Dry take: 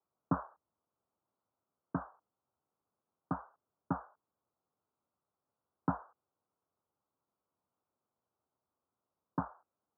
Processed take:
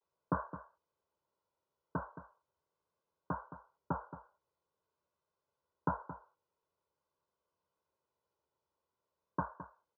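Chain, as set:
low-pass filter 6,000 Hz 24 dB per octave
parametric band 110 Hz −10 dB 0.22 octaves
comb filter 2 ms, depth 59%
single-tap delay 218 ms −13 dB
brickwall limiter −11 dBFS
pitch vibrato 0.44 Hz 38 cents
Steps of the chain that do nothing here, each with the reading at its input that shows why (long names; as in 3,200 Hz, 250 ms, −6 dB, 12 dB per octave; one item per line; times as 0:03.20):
low-pass filter 6,000 Hz: nothing at its input above 1,600 Hz
brickwall limiter −11 dBFS: peak of its input −18.5 dBFS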